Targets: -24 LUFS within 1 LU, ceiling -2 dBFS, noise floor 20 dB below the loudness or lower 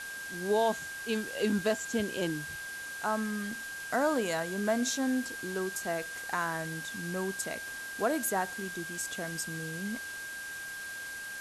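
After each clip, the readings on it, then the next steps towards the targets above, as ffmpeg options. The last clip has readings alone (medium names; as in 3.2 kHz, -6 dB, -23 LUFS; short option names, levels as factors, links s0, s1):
steady tone 1.6 kHz; tone level -39 dBFS; noise floor -41 dBFS; noise floor target -53 dBFS; loudness -33.0 LUFS; peak level -16.5 dBFS; loudness target -24.0 LUFS
-> -af "bandreject=f=1600:w=30"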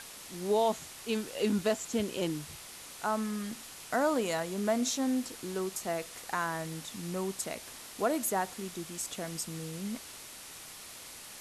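steady tone not found; noise floor -48 dBFS; noise floor target -54 dBFS
-> -af "afftdn=nr=6:nf=-48"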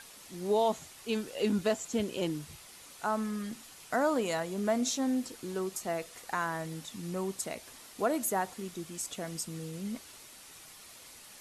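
noise floor -52 dBFS; noise floor target -54 dBFS
-> -af "afftdn=nr=6:nf=-52"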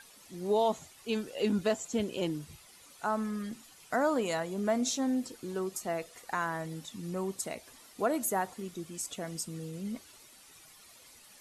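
noise floor -57 dBFS; loudness -33.5 LUFS; peak level -17.0 dBFS; loudness target -24.0 LUFS
-> -af "volume=2.99"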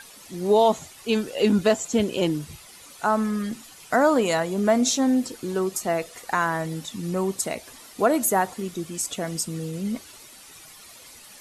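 loudness -24.0 LUFS; peak level -7.5 dBFS; noise floor -47 dBFS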